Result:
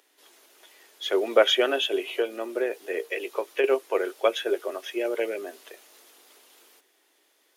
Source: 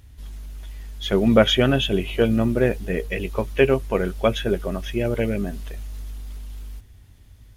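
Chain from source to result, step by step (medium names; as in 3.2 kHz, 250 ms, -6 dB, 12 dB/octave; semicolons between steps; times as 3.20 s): 2.10–3.64 s: compression, threshold -18 dBFS, peak gain reduction 7.5 dB; steep high-pass 330 Hz 48 dB/octave; trim -2 dB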